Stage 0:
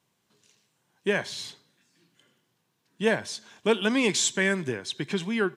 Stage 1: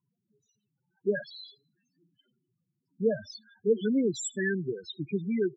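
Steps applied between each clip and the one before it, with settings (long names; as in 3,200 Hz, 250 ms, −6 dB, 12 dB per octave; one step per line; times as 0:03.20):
spectral peaks only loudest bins 4
notch filter 2,100 Hz, Q 9.4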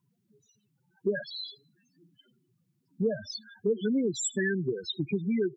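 downward compressor 3 to 1, threshold −35 dBFS, peak gain reduction 12 dB
level +7.5 dB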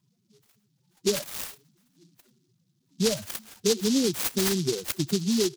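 short delay modulated by noise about 4,800 Hz, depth 0.19 ms
level +3.5 dB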